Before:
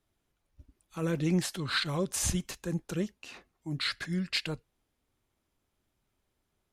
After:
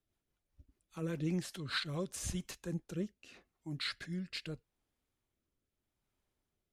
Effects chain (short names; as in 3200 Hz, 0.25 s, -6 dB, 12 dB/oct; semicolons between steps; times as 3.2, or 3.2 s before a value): rotary speaker horn 5 Hz, later 0.8 Hz, at 1.59; gain -5.5 dB